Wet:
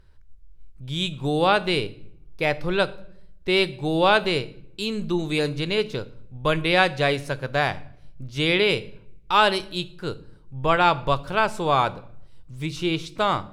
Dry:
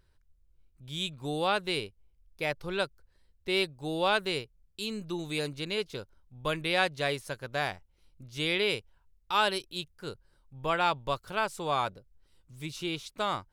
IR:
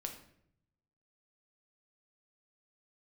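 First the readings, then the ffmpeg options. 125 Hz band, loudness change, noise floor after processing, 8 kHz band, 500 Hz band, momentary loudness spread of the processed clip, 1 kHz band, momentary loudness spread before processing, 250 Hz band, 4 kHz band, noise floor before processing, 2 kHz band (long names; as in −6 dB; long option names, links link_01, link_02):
+11.5 dB, +8.5 dB, −48 dBFS, +3.0 dB, +9.0 dB, 15 LU, +9.0 dB, 14 LU, +10.0 dB, +6.5 dB, −68 dBFS, +8.0 dB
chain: -filter_complex "[0:a]aemphasis=mode=reproduction:type=50kf,asplit=2[link_01][link_02];[1:a]atrim=start_sample=2205,lowshelf=frequency=180:gain=11.5,highshelf=frequency=4000:gain=10[link_03];[link_02][link_03]afir=irnorm=-1:irlink=0,volume=-8.5dB[link_04];[link_01][link_04]amix=inputs=2:normalize=0,volume=7dB"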